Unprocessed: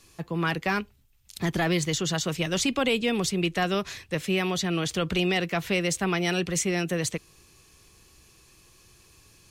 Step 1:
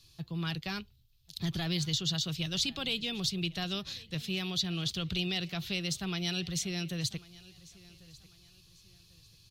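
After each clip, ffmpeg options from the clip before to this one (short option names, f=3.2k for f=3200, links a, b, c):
-af "equalizer=f=125:t=o:w=1:g=6,equalizer=f=250:t=o:w=1:g=-8,equalizer=f=500:t=o:w=1:g=-10,equalizer=f=1k:t=o:w=1:g=-8,equalizer=f=2k:t=o:w=1:g=-10,equalizer=f=4k:t=o:w=1:g=11,equalizer=f=8k:t=o:w=1:g=-9,aecho=1:1:1094|2188:0.0841|0.0286,volume=-4dB"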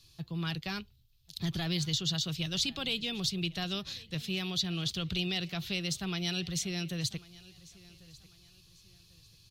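-af anull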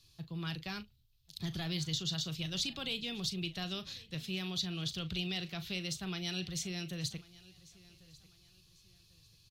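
-filter_complex "[0:a]asplit=2[a][b];[b]adelay=38,volume=-13dB[c];[a][c]amix=inputs=2:normalize=0,volume=-4.5dB"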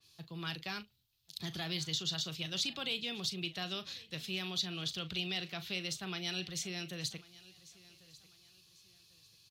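-af "highpass=f=340:p=1,adynamicequalizer=threshold=0.00355:dfrequency=3500:dqfactor=0.7:tfrequency=3500:tqfactor=0.7:attack=5:release=100:ratio=0.375:range=1.5:mode=cutabove:tftype=highshelf,volume=2.5dB"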